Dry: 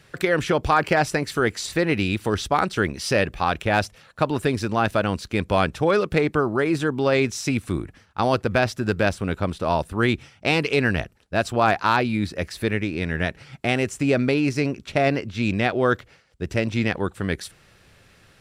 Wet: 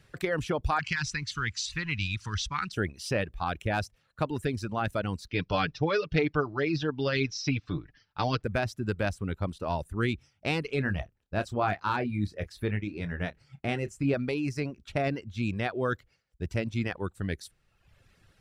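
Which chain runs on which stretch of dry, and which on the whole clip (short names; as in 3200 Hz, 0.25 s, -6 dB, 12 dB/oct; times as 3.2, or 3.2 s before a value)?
0.79–2.72 G.711 law mismatch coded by mu + EQ curve 140 Hz 0 dB, 230 Hz -8 dB, 400 Hz -17 dB, 670 Hz -27 dB, 970 Hz -1 dB, 2500 Hz +5 dB, 6200 Hz +7 dB, 13000 Hz -22 dB
5.28–8.44 elliptic low-pass 5400 Hz, stop band 50 dB + high shelf 3100 Hz +10.5 dB + comb 6.8 ms, depth 60%
10.66–14.14 high shelf 4200 Hz -6.5 dB + doubler 29 ms -8.5 dB
whole clip: reverb removal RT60 0.97 s; low shelf 120 Hz +10.5 dB; gain -9 dB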